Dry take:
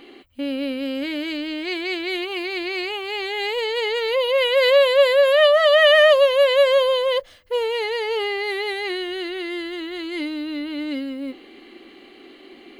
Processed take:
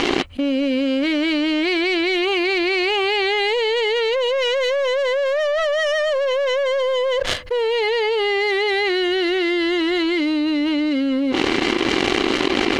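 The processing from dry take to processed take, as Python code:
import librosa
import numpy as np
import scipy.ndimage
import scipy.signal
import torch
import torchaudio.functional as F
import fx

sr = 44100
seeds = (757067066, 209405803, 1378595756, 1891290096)

y = fx.leveller(x, sr, passes=3)
y = fx.air_absorb(y, sr, metres=71.0)
y = fx.env_flatten(y, sr, amount_pct=100)
y = y * 10.0 ** (-12.0 / 20.0)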